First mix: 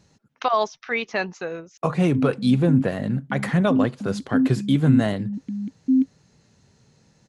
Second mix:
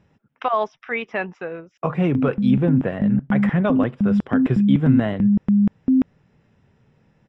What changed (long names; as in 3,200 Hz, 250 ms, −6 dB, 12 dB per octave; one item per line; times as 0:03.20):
background: remove formant filter i
master: add Savitzky-Golay smoothing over 25 samples